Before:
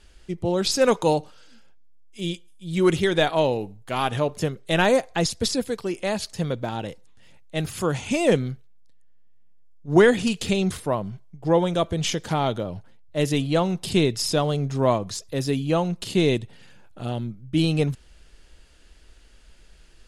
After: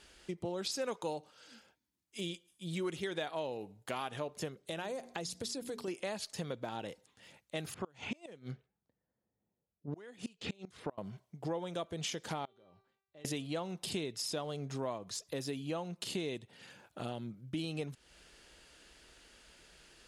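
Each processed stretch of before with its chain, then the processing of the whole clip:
4.56–5.88 s: peaking EQ 1.8 kHz -4.5 dB 1.8 oct + hum notches 60/120/180/240/300/360/420 Hz + compression 3:1, threshold -31 dBFS
7.74–10.98 s: level-controlled noise filter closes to 780 Hz, open at -17.5 dBFS + inverted gate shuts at -15 dBFS, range -30 dB
12.45–13.25 s: low-pass 5.4 kHz + compression 3:1, threshold -36 dBFS + feedback comb 390 Hz, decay 0.64 s, mix 90%
whole clip: high-pass 270 Hz 6 dB/octave; compression 4:1, threshold -38 dBFS

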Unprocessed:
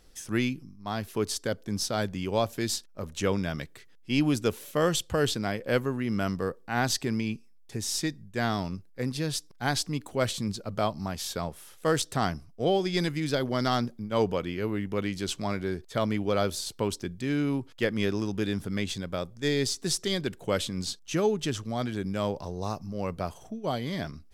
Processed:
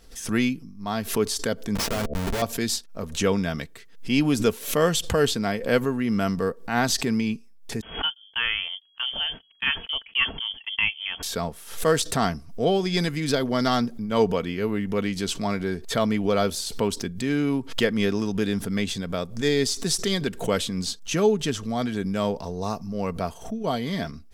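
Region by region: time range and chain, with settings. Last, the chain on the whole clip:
1.75–2.42 s: Schmitt trigger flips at -30.5 dBFS + de-hum 73.55 Hz, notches 9
7.81–11.23 s: gate -38 dBFS, range -44 dB + bass shelf 180 Hz -7.5 dB + frequency inversion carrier 3.3 kHz
whole clip: comb 4.4 ms, depth 36%; swell ahead of each attack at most 120 dB/s; trim +3.5 dB

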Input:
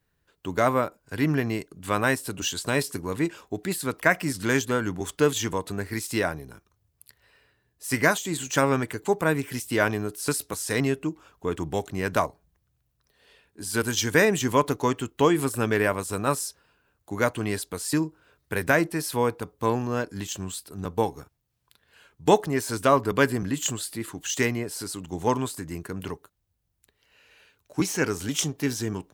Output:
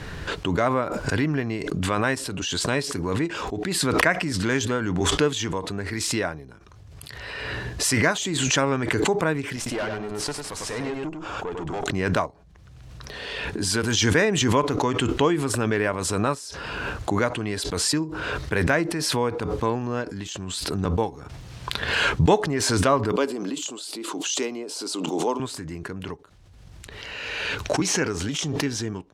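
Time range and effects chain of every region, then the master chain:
9.56–11.84 s: peaking EQ 810 Hz +6.5 dB 1.1 oct + valve stage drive 23 dB, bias 0.65 + delay 100 ms -5.5 dB
23.12–25.40 s: high-pass 270 Hz 24 dB/octave + peaking EQ 1.8 kHz -13 dB 0.63 oct
whole clip: low-pass 5.6 kHz 12 dB/octave; swell ahead of each attack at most 23 dB/s; trim -1 dB

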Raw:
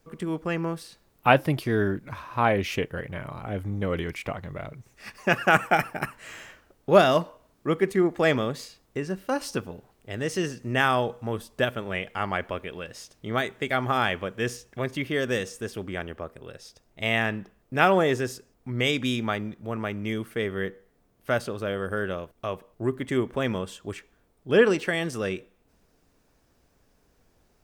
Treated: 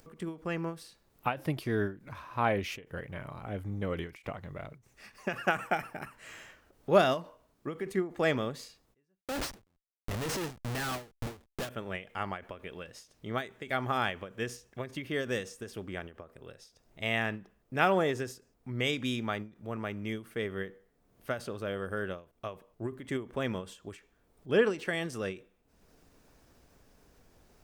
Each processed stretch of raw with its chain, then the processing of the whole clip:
9.21–11.69 s: treble shelf 2.2 kHz +2.5 dB + Schmitt trigger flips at -36 dBFS
whole clip: upward compressor, threshold -45 dBFS; endings held to a fixed fall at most 180 dB/s; trim -6 dB

